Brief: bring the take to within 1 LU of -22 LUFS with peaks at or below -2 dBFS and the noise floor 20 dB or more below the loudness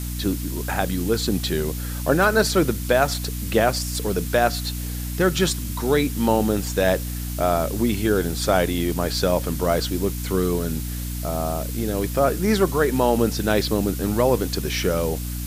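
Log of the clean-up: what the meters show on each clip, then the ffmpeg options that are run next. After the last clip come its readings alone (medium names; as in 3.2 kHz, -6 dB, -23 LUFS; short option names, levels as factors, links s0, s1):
hum 60 Hz; highest harmonic 300 Hz; hum level -26 dBFS; noise floor -29 dBFS; noise floor target -43 dBFS; loudness -22.5 LUFS; peak level -4.5 dBFS; loudness target -22.0 LUFS
-> -af "bandreject=f=60:t=h:w=6,bandreject=f=120:t=h:w=6,bandreject=f=180:t=h:w=6,bandreject=f=240:t=h:w=6,bandreject=f=300:t=h:w=6"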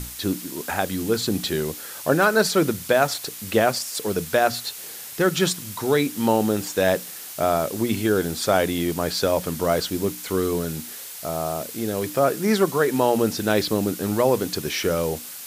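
hum not found; noise floor -37 dBFS; noise floor target -43 dBFS
-> -af "afftdn=nr=6:nf=-37"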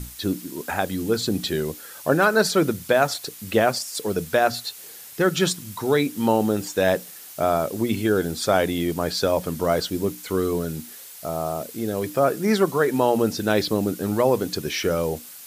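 noise floor -42 dBFS; noise floor target -43 dBFS
-> -af "afftdn=nr=6:nf=-42"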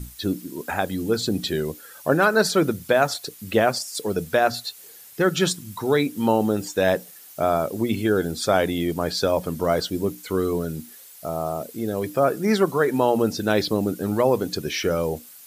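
noise floor -46 dBFS; loudness -23.0 LUFS; peak level -5.0 dBFS; loudness target -22.0 LUFS
-> -af "volume=1.12"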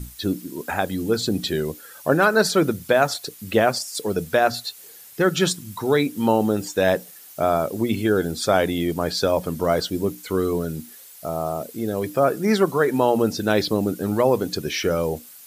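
loudness -22.0 LUFS; peak level -4.0 dBFS; noise floor -45 dBFS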